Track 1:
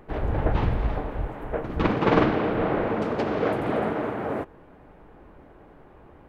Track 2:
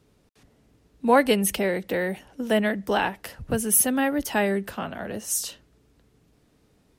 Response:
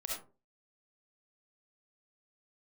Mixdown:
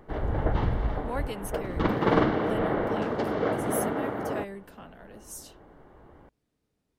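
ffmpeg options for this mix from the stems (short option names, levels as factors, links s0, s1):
-filter_complex "[0:a]bandreject=f=2500:w=6.2,volume=0.75[s0];[1:a]volume=0.158[s1];[s0][s1]amix=inputs=2:normalize=0"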